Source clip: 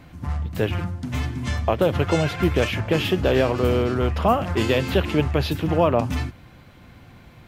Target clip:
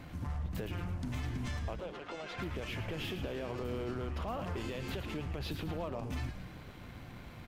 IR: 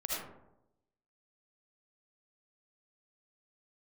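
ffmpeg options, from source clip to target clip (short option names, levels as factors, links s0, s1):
-filter_complex "[0:a]acompressor=threshold=0.0282:ratio=6,alimiter=level_in=1.5:limit=0.0631:level=0:latency=1:release=38,volume=0.668,aeval=exprs='0.0422*(cos(1*acos(clip(val(0)/0.0422,-1,1)))-cos(1*PI/2))+0.0015*(cos(8*acos(clip(val(0)/0.0422,-1,1)))-cos(8*PI/2))':c=same,asettb=1/sr,asplit=3[s0][s1][s2];[s0]atrim=end=1.804[s3];[s1]atrim=start=1.8:end=2.38,asetpts=PTS-STARTPTS,afade=t=in:d=0.004:c=qsin,afade=t=out:st=0.576:d=0.004:c=qsin,highpass=410,lowpass=6100[s4];[s2]atrim=start=2.376[s5];[s3][s4]acrossfade=d=0.004:c1=hsin:c2=qsin[s6];[s6][s5]acrossfade=d=0.004:c1=qsin:c2=hsin,asplit=6[s7][s8][s9][s10][s11][s12];[s8]adelay=112,afreqshift=-130,volume=0.355[s13];[s9]adelay=224,afreqshift=-260,volume=0.16[s14];[s10]adelay=336,afreqshift=-390,volume=0.0716[s15];[s11]adelay=448,afreqshift=-520,volume=0.0324[s16];[s12]adelay=560,afreqshift=-650,volume=0.0146[s17];[s7][s13][s14][s15][s16][s17]amix=inputs=6:normalize=0,volume=0.75"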